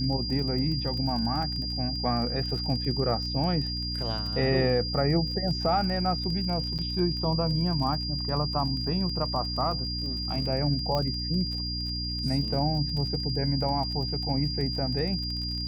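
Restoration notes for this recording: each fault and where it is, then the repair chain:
crackle 31 per s -34 dBFS
hum 60 Hz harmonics 5 -34 dBFS
whine 4.8 kHz -32 dBFS
6.78–6.79 s: dropout 7.7 ms
10.95 s: pop -17 dBFS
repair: de-click; de-hum 60 Hz, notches 5; band-stop 4.8 kHz, Q 30; interpolate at 6.78 s, 7.7 ms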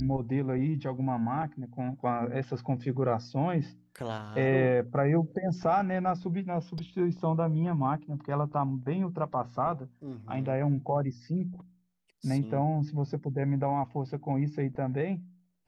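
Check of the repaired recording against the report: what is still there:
nothing left

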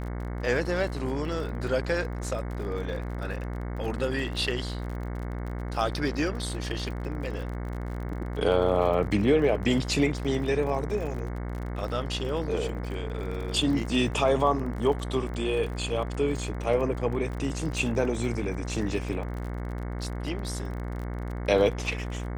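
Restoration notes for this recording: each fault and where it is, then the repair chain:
buzz 60 Hz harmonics 37 -33 dBFS
crackle 42 per s -35 dBFS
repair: de-click; de-hum 60 Hz, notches 37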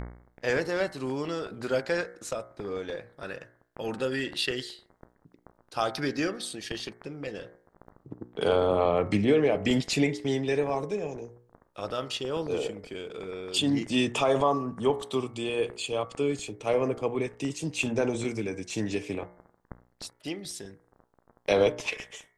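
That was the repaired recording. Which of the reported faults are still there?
nothing left

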